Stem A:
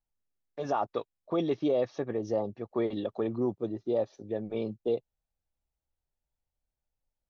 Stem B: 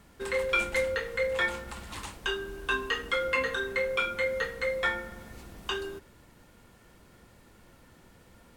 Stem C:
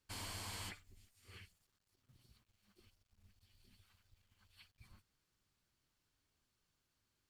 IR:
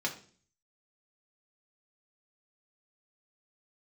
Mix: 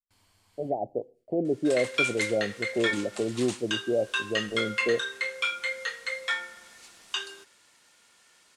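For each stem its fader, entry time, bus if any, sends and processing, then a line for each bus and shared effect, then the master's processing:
+1.5 dB, 0.00 s, send −19.5 dB, Butterworth low-pass 750 Hz 72 dB per octave
−5.0 dB, 1.45 s, no send, meter weighting curve ITU-R 468
−19.5 dB, 0.00 s, no send, no processing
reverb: on, RT60 0.45 s, pre-delay 3 ms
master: noise gate with hold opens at −59 dBFS

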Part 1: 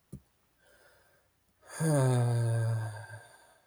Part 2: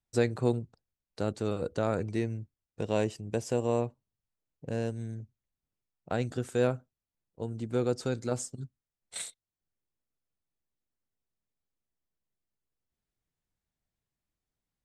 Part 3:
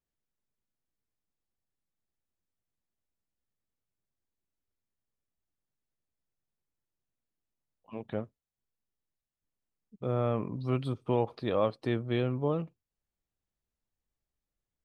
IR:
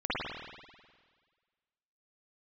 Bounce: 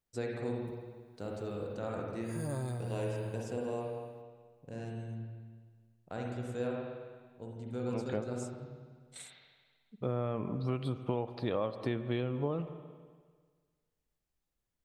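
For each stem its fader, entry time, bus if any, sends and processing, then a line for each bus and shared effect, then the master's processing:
−10.5 dB, 0.55 s, no send, no processing
−14.0 dB, 0.00 s, send −5 dB, no processing
+1.0 dB, 0.00 s, send −23 dB, no processing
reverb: on, RT60 1.6 s, pre-delay 49 ms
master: downward compressor 6 to 1, threshold −29 dBFS, peak gain reduction 9.5 dB

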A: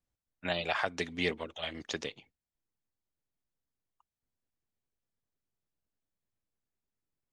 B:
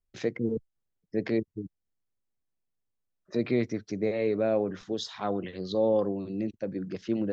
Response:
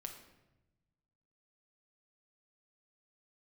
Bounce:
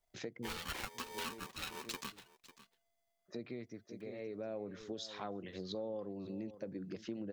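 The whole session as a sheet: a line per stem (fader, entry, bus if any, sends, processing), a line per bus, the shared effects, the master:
−2.0 dB, 0.00 s, no send, echo send −23.5 dB, comb filter 4.1 ms, depth 51%; ring modulator with a square carrier 680 Hz
−3.5 dB, 0.00 s, no send, echo send −21 dB, automatic ducking −16 dB, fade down 1.05 s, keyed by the first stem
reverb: not used
echo: single-tap delay 547 ms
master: high-shelf EQ 4,600 Hz +4 dB; downward compressor 4 to 1, threshold −41 dBFS, peak gain reduction 14 dB

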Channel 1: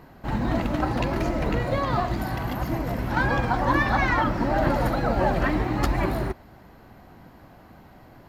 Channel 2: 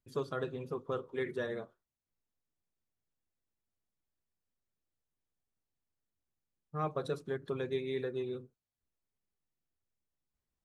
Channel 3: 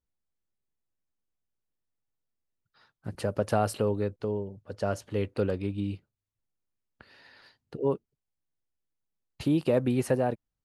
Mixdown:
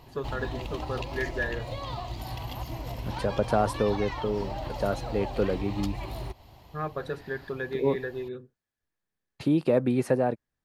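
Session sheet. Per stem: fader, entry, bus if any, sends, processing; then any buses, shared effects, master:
−0.5 dB, 0.00 s, no send, drawn EQ curve 120 Hz 0 dB, 180 Hz −11 dB, 1,000 Hz −1 dB, 1,500 Hz −13 dB, 3,000 Hz +8 dB; downward compressor, threshold −31 dBFS, peak gain reduction 11.5 dB
+2.0 dB, 0.00 s, no send, parametric band 1,700 Hz +13.5 dB 0.26 octaves
+2.0 dB, 0.00 s, no send, high-pass filter 120 Hz; notch filter 2,900 Hz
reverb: not used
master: high-shelf EQ 5,200 Hz −8 dB

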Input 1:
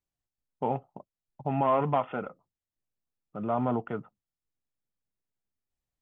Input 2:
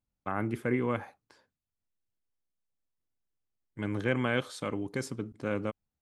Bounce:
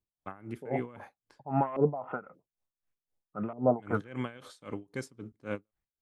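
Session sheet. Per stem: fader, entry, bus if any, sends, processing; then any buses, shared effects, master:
−1.0 dB, 0.00 s, no send, auto-filter low-pass saw up 1.7 Hz 360–2,400 Hz
−4.5 dB, 0.00 s, no send, every ending faded ahead of time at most 300 dB per second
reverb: not used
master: automatic gain control gain up to 3 dB; tremolo with a sine in dB 3.8 Hz, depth 20 dB

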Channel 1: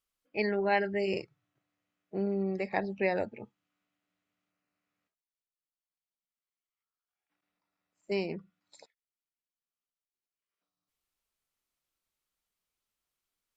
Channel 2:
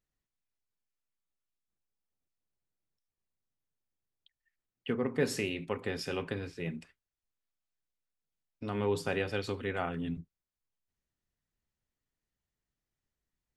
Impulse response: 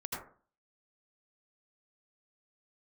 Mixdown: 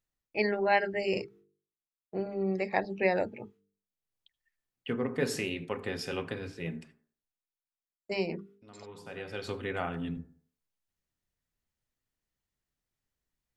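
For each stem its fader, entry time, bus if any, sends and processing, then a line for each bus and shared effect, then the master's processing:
+2.5 dB, 0.00 s, no send, downward expander −55 dBFS; mains-hum notches 50/100/150/200/250/300/350/400/450 Hz
+0.5 dB, 0.00 s, send −21 dB, hum removal 73.33 Hz, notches 24; automatic ducking −21 dB, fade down 1.35 s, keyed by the first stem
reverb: on, RT60 0.40 s, pre-delay 73 ms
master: mains-hum notches 50/100/150/200/250/300/350/400/450 Hz

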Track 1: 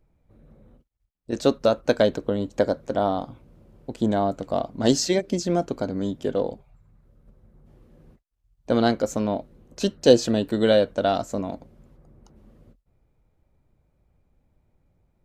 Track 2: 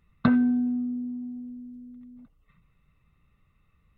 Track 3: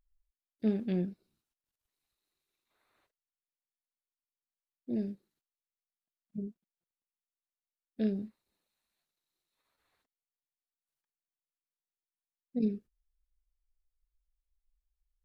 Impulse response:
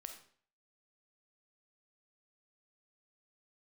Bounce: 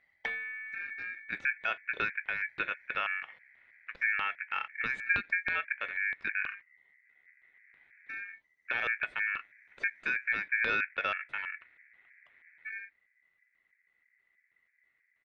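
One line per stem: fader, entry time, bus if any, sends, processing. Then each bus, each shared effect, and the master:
−3.0 dB, 0.00 s, no send, brickwall limiter −12.5 dBFS, peak gain reduction 10.5 dB; auto-filter low-pass square 3.1 Hz 350–1,800 Hz
+0.5 dB, 0.00 s, no send, one-sided soft clipper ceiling −20.5 dBFS; automatic ducking −9 dB, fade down 0.40 s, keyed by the first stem
+2.0 dB, 0.10 s, no send, treble cut that deepens with the level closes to 2,600 Hz, closed at −33.5 dBFS; comb filter 2.9 ms, depth 73%; brickwall limiter −29 dBFS, peak gain reduction 8.5 dB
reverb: not used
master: ring modulation 2,000 Hz; high-shelf EQ 2,200 Hz −10 dB

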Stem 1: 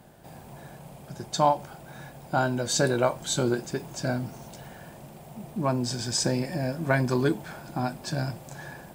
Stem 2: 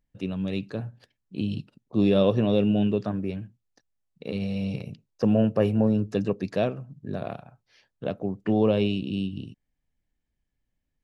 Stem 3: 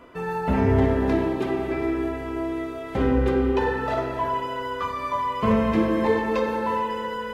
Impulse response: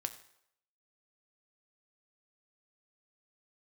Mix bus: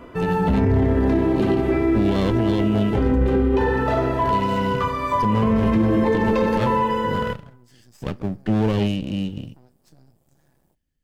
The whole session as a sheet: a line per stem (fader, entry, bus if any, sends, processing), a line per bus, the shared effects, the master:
−16.0 dB, 1.80 s, send −10.5 dB, parametric band 1,700 Hz −13.5 dB 2.6 octaves; downward compressor 3 to 1, threshold −34 dBFS, peak gain reduction 9.5 dB; half-wave rectification
+2.5 dB, 0.00 s, send −14 dB, lower of the sound and its delayed copy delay 0.63 ms; parametric band 1,100 Hz −7.5 dB 0.78 octaves
0.0 dB, 0.00 s, send −5.5 dB, low-shelf EQ 360 Hz +8.5 dB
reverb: on, RT60 0.75 s, pre-delay 4 ms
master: brickwall limiter −11 dBFS, peak gain reduction 10.5 dB

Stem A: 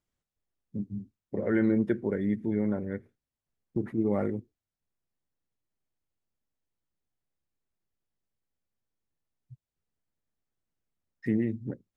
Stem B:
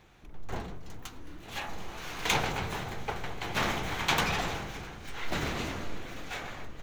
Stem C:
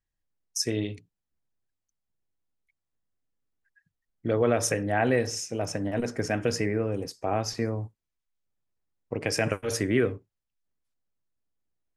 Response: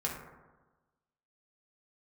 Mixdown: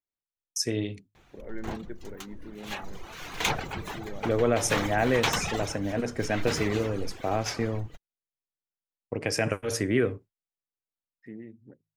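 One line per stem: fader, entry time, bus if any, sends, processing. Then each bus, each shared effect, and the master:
−12.5 dB, 0.00 s, no send, bass and treble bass −6 dB, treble −5 dB; hum removal 52.23 Hz, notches 3
+1.0 dB, 1.15 s, no send, reverb reduction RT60 0.89 s
−0.5 dB, 0.00 s, no send, downward expander −43 dBFS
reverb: not used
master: no processing

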